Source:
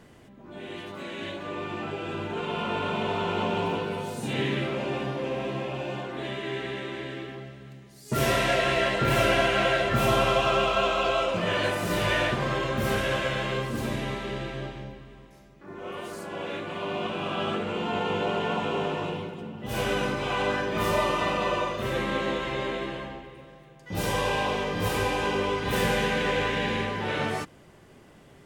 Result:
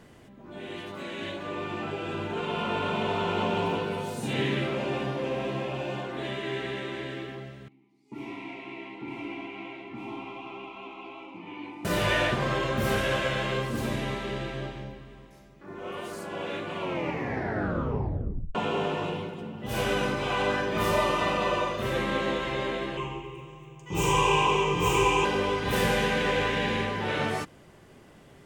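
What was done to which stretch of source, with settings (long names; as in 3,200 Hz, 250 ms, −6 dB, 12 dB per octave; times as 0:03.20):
0:07.68–0:11.85: formant filter u
0:16.74: tape stop 1.81 s
0:22.97–0:25.25: EQ curve with evenly spaced ripples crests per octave 0.71, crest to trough 16 dB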